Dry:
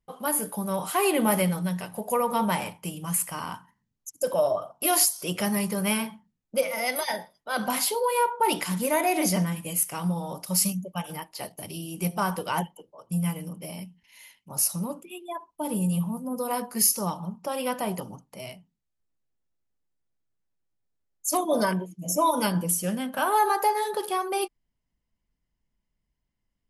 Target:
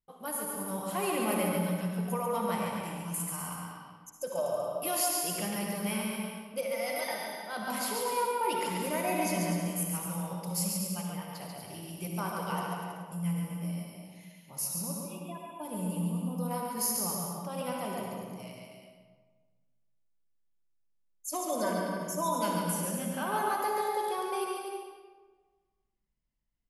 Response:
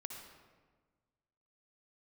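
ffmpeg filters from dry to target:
-filter_complex "[0:a]aecho=1:1:140|245|323.8|382.8|427.1:0.631|0.398|0.251|0.158|0.1[a];[1:a]atrim=start_sample=2205[b];[a][b]afir=irnorm=-1:irlink=0,volume=-5.5dB"

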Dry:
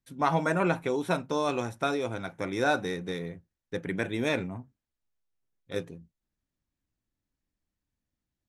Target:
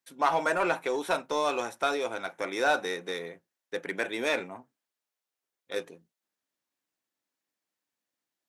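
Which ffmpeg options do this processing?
-filter_complex "[0:a]highpass=470,asplit=2[a][b];[b]volume=31dB,asoftclip=hard,volume=-31dB,volume=-4.5dB[c];[a][c]amix=inputs=2:normalize=0"

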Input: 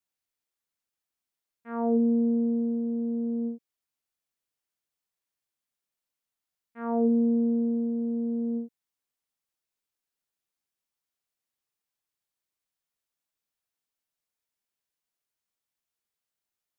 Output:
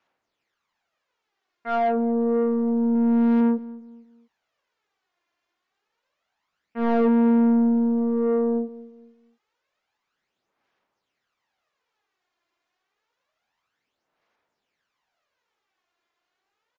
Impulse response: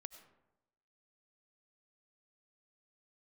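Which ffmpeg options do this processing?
-filter_complex "[0:a]aemphasis=mode=reproduction:type=50kf,alimiter=level_in=0.5dB:limit=-24dB:level=0:latency=1,volume=-0.5dB,aphaser=in_gain=1:out_gain=1:delay=2.9:decay=0.57:speed=0.28:type=sinusoidal,asplit=2[a][b];[b]highpass=f=720:p=1,volume=22dB,asoftclip=type=tanh:threshold=-17dB[c];[a][c]amix=inputs=2:normalize=0,lowpass=f=1.5k:p=1,volume=-6dB,asettb=1/sr,asplit=3[d][e][f];[d]atrim=end=2.954[g];[e]atrim=start=2.95:end=3.41,asetpts=PTS-STARTPTS,afade=t=in:d=0.004:c=qsin,afade=t=out:st=0.456:d=0.004:c=qsin,adynamicsmooth=sensitivity=3.5:basefreq=1.3k[h];[f]atrim=start=3.406[i];[g][h]acrossfade=d=0.004:c1=hsin:c2=qsin[j];[j][i]acrossfade=d=0.004:c1=qsin:c2=hsin,asplit=2[k][l];[l]adelay=232,lowpass=f=900:p=1,volume=-18dB,asplit=2[m][n];[n]adelay=232,lowpass=f=900:p=1,volume=0.38,asplit=2[o][p];[p]adelay=232,lowpass=f=900:p=1,volume=0.38[q];[m][o][q]amix=inputs=3:normalize=0[r];[k][r]amix=inputs=2:normalize=0,aresample=16000,aresample=44100,volume=4.5dB" -ar 44100 -c:a libmp3lame -b:a 40k

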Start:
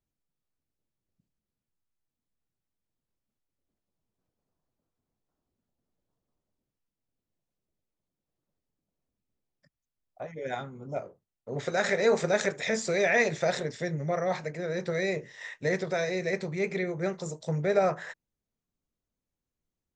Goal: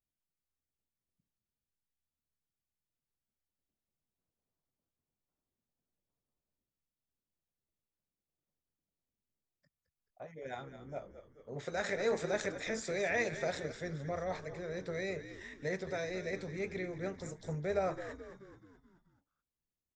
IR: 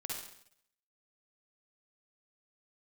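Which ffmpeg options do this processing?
-filter_complex "[0:a]asplit=7[a][b][c][d][e][f][g];[b]adelay=215,afreqshift=-72,volume=-12dB[h];[c]adelay=430,afreqshift=-144,volume=-17.5dB[i];[d]adelay=645,afreqshift=-216,volume=-23dB[j];[e]adelay=860,afreqshift=-288,volume=-28.5dB[k];[f]adelay=1075,afreqshift=-360,volume=-34.1dB[l];[g]adelay=1290,afreqshift=-432,volume=-39.6dB[m];[a][h][i][j][k][l][m]amix=inputs=7:normalize=0,volume=-9dB"

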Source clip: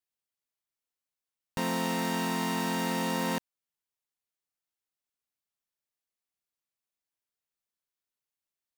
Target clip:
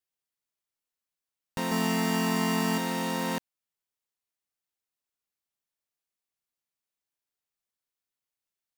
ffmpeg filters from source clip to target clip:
-filter_complex "[0:a]asettb=1/sr,asplit=3[a][b][c];[a]atrim=end=1.714[d];[b]atrim=start=1.71:end=2.78,asetpts=PTS-STARTPTS,afade=t=in:d=0.004:c=qsin,afade=t=out:st=1.066:d=0.004:c=qsin,aecho=1:1:4.7:1,atrim=end_sample=47187[e];[c]atrim=start=2.776[f];[d][e]acrossfade=d=0.004:c1=hsin:c2=qsin[g];[g][f]acrossfade=d=0.004:c1=qsin:c2=hsin"

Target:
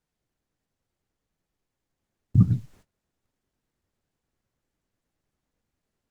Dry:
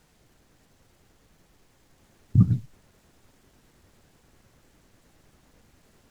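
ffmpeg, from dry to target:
-af "agate=range=-22dB:threshold=-52dB:ratio=16:detection=peak"

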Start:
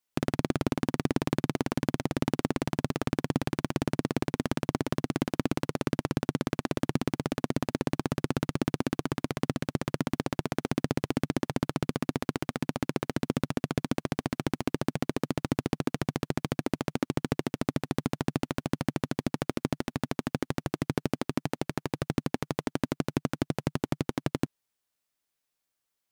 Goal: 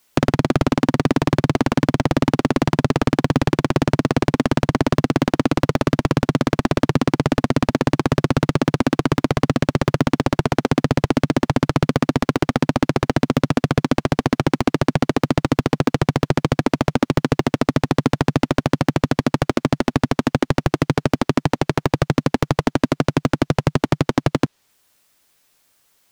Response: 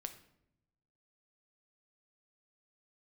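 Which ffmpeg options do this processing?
-filter_complex "[0:a]apsyclip=25.5dB,acrossover=split=1600|7200[a][b][c];[a]acompressor=threshold=-9dB:ratio=4[d];[b]acompressor=threshold=-24dB:ratio=4[e];[c]acompressor=threshold=-44dB:ratio=4[f];[d][e][f]amix=inputs=3:normalize=0,volume=-3.5dB"

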